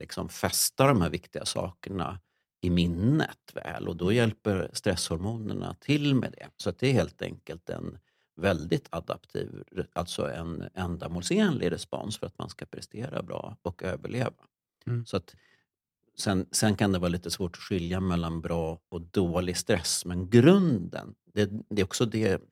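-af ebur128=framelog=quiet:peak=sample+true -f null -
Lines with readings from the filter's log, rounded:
Integrated loudness:
  I:         -28.9 LUFS
  Threshold: -39.3 LUFS
Loudness range:
  LRA:         8.6 LU
  Threshold: -49.8 LUFS
  LRA low:   -34.5 LUFS
  LRA high:  -25.9 LUFS
Sample peak:
  Peak:       -6.3 dBFS
True peak:
  Peak:       -6.3 dBFS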